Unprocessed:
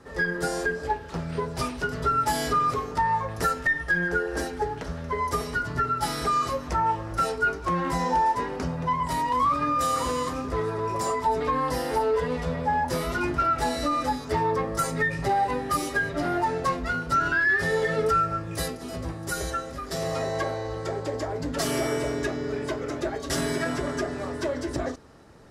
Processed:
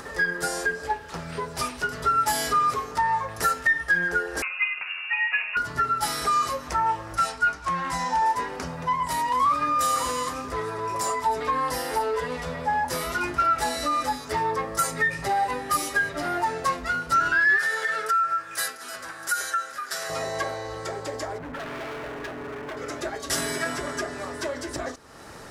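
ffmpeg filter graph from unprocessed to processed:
-filter_complex "[0:a]asettb=1/sr,asplit=3[a][b][c];[a]atrim=end=4.424[d];[b]atrim=start=4.42:end=5.57,asetpts=PTS-STARTPTS,afade=t=in:d=0.004:c=qsin,afade=t=out:st=1.146:d=0.004:c=qsin,highpass=f=110:p=1,lowpass=f=2.5k:t=q:w=0.5098,lowpass=f=2.5k:t=q:w=0.6013,lowpass=f=2.5k:t=q:w=0.9,lowpass=f=2.5k:t=q:w=2.563,afreqshift=-2900[e];[c]atrim=start=5.566[f];[d][e]acrossfade=d=0.004:c1=hsin:c2=qsin[g];[g][f]acrossfade=d=0.004:c1=qsin:c2=hsin,asettb=1/sr,asplit=3[h][i][j];[h]atrim=end=7.164[k];[i]atrim=start=7.16:end=8.22,asetpts=PTS-STARTPTS,afade=t=in:d=0.004:c=qsin,afade=t=out:st=1.056:d=0.004:c=qsin,lowpass=10k,equalizer=f=410:w=2.6:g=-13.5[l];[j]atrim=start=8.216[m];[k][l]acrossfade=d=0.004:c1=hsin:c2=qsin[n];[n][m]acrossfade=d=0.004:c1=qsin:c2=hsin,asettb=1/sr,asplit=3[o][p][q];[o]atrim=end=17.584[r];[p]atrim=start=17.58:end=20.1,asetpts=PTS-STARTPTS,afade=t=in:d=0.004:c=qsin,afade=t=out:st=2.516:d=0.004:c=qsin,highpass=f=1.1k:p=1,equalizer=f=1.5k:w=3.9:g=13.5,acompressor=threshold=-24dB:ratio=3:attack=3.2:release=140:knee=1:detection=peak[s];[q]atrim=start=20.096[t];[r][s]acrossfade=d=0.004:c1=hsin:c2=qsin[u];[u][t]acrossfade=d=0.004:c1=qsin:c2=hsin,asettb=1/sr,asplit=3[v][w][x];[v]atrim=end=21.384[y];[w]atrim=start=21.38:end=22.77,asetpts=PTS-STARTPTS,afade=t=in:d=0.004:c=qsin,afade=t=out:st=1.386:d=0.004:c=qsin,lowpass=f=2k:w=0.5412,lowpass=f=2k:w=1.3066,asoftclip=type=hard:threshold=-31.5dB[z];[x]atrim=start=22.766[aa];[y][z]acrossfade=d=0.004:c1=hsin:c2=qsin[ab];[ab][aa]acrossfade=d=0.004:c1=qsin:c2=hsin,tiltshelf=f=770:g=-7,acompressor=mode=upward:threshold=-30dB:ratio=2.5,equalizer=f=3.6k:w=0.64:g=-4"

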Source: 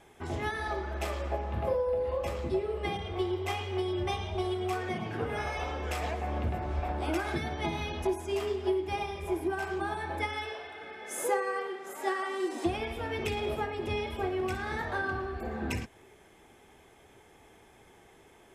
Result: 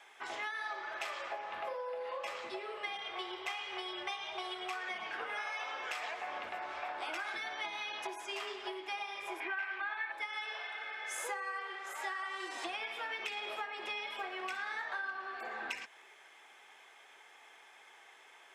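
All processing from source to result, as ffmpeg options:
-filter_complex "[0:a]asettb=1/sr,asplit=3[a][b][c];[a]atrim=end=9.404[d];[b]atrim=start=9.4:end=10.12,asetpts=PTS-STARTPTS,afade=t=in:d=0.004:c=qsin,afade=t=out:st=0.716:d=0.004:c=qsin,lowpass=3.7k,equalizer=f=2.1k:w=1.1:g=14[e];[c]atrim=start=10.116[f];[d][e]acrossfade=d=0.004:c1=hsin:c2=qsin[g];[g][f]acrossfade=d=0.004:c1=qsin:c2=hsin,highpass=1.2k,equalizer=f=13k:w=0.51:g=-14.5,acompressor=threshold=-43dB:ratio=6,volume=6.5dB"

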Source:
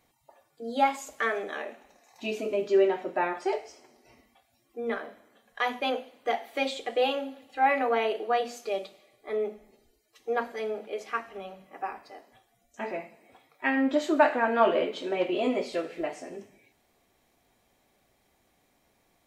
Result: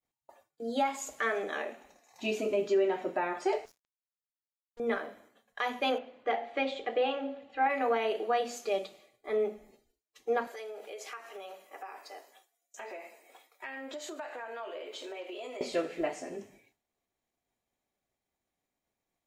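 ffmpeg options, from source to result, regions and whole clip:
-filter_complex "[0:a]asettb=1/sr,asplit=3[a][b][c];[a]atrim=end=3.654[d];[b]atrim=start=3.65:end=4.8,asetpts=PTS-STARTPTS,afade=t=in:d=0.004:c=qsin,afade=t=out:st=1.146:d=0.004:c=qsin,acrusher=bits=6:mix=0:aa=0.5,acompressor=threshold=-49dB:ratio=2.5:attack=3.2:release=140:knee=1:detection=peak,aeval=exprs='(tanh(316*val(0)+0.7)-tanh(0.7))/316':c=same[e];[c]atrim=start=4.796[f];[d][e]acrossfade=d=0.004:c1=hsin:c2=qsin[g];[g][f]acrossfade=d=0.004:c1=qsin:c2=hsin,asettb=1/sr,asplit=3[h][i][j];[h]atrim=end=5.984[k];[i]atrim=start=5.98:end=7.7,asetpts=PTS-STARTPTS,afade=t=in:d=0.004:c=qsin,afade=t=out:st=1.716:d=0.004:c=qsin,lowpass=2.9k,bandreject=f=46.85:t=h:w=4,bandreject=f=93.7:t=h:w=4,bandreject=f=140.55:t=h:w=4,bandreject=f=187.4:t=h:w=4,bandreject=f=234.25:t=h:w=4,bandreject=f=281.1:t=h:w=4,bandreject=f=327.95:t=h:w=4,bandreject=f=374.8:t=h:w=4,bandreject=f=421.65:t=h:w=4,bandreject=f=468.5:t=h:w=4,bandreject=f=515.35:t=h:w=4,bandreject=f=562.2:t=h:w=4,bandreject=f=609.05:t=h:w=4,bandreject=f=655.9:t=h:w=4,bandreject=f=702.75:t=h:w=4,bandreject=f=749.6:t=h:w=4,bandreject=f=796.45:t=h:w=4,bandreject=f=843.3:t=h:w=4,bandreject=f=890.15:t=h:w=4[l];[j]atrim=start=7.696[m];[k][l]acrossfade=d=0.004:c1=hsin:c2=qsin[n];[n][m]acrossfade=d=0.004:c1=qsin:c2=hsin,asettb=1/sr,asplit=3[o][p][q];[o]atrim=end=10.474[r];[p]atrim=start=10.47:end=15.61,asetpts=PTS-STARTPTS,afade=t=in:d=0.004:c=qsin,afade=t=out:st=5.136:d=0.004:c=qsin,highpass=f=360:w=0.5412,highpass=f=360:w=1.3066,highshelf=f=4.5k:g=9.5,acompressor=threshold=-40dB:ratio=5:attack=3.2:release=140:knee=1:detection=peak[s];[q]atrim=start=15.606[t];[r][s]acrossfade=d=0.004:c1=hsin:c2=qsin[u];[u][t]acrossfade=d=0.004:c1=qsin:c2=hsin,alimiter=limit=-19.5dB:level=0:latency=1:release=223,agate=range=-33dB:threshold=-56dB:ratio=3:detection=peak,equalizer=f=6.9k:w=6.9:g=5"

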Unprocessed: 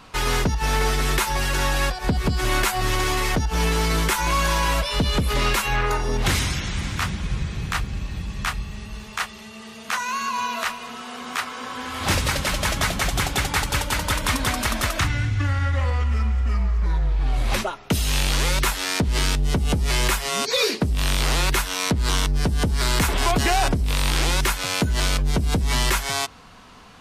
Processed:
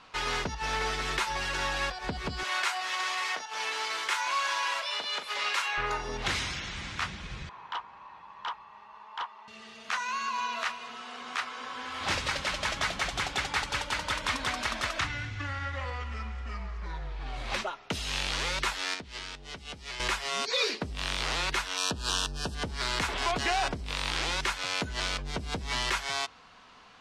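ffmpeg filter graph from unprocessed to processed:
-filter_complex "[0:a]asettb=1/sr,asplit=3[a][b][c];[a]atrim=end=2.434[d];[b]atrim=start=2.43:end=5.78,asetpts=PTS-STARTPTS,afade=t=in:d=0.004:c=qsin,afade=t=out:st=3.346:d=0.004:c=qsin,highpass=710,asplit=2[e][f];[f]adelay=39,volume=-9dB[g];[e][g]amix=inputs=2:normalize=0,atrim=end_sample=147735[h];[c]atrim=start=5.776[i];[d][h]acrossfade=d=0.004:c1=hsin:c2=qsin[j];[j][i]acrossfade=d=0.004:c1=qsin:c2=hsin,asettb=1/sr,asplit=3[k][l][m];[k]atrim=end=7.494[n];[l]atrim=start=7.49:end=9.48,asetpts=PTS-STARTPTS,afade=t=in:d=0.004:c=qsin,afade=t=out:st=1.986:d=0.004:c=qsin,bandpass=f=970:t=q:w=9.2,aeval=exprs='0.0708*sin(PI/2*3.55*val(0)/0.0708)':c=same[o];[m]atrim=start=9.476[p];[n][o]acrossfade=d=0.004:c1=hsin:c2=qsin[q];[q][p]acrossfade=d=0.004:c1=qsin:c2=hsin,asettb=1/sr,asplit=3[r][s][t];[r]atrim=end=18.944[u];[s]atrim=start=18.94:end=20,asetpts=PTS-STARTPTS,afade=t=in:d=0.004:c=qsin,afade=t=out:st=1.056:d=0.004:c=qsin,highshelf=f=11k:g=-9.5,acrossover=split=280|1700[v][w][x];[v]acompressor=threshold=-34dB:ratio=4[y];[w]acompressor=threshold=-40dB:ratio=4[z];[x]acompressor=threshold=-33dB:ratio=4[aa];[y][z][aa]amix=inputs=3:normalize=0[ab];[t]atrim=start=19.996[ac];[u][ab]acrossfade=d=0.004:c1=hsin:c2=qsin[ad];[ad][ac]acrossfade=d=0.004:c1=qsin:c2=hsin,asettb=1/sr,asplit=3[ae][af][ag];[ae]atrim=end=21.774[ah];[af]atrim=start=21.77:end=22.55,asetpts=PTS-STARTPTS,afade=t=in:d=0.004:c=qsin,afade=t=out:st=0.776:d=0.004:c=qsin,asuperstop=centerf=2100:order=12:qfactor=3.5,aemphasis=mode=production:type=cd[ai];[ag]atrim=start=22.546[aj];[ah][ai]acrossfade=d=0.004:c1=hsin:c2=qsin[ak];[ak][aj]acrossfade=d=0.004:c1=qsin:c2=hsin,lowpass=5.5k,lowshelf=f=360:g=-12,volume=-5dB"

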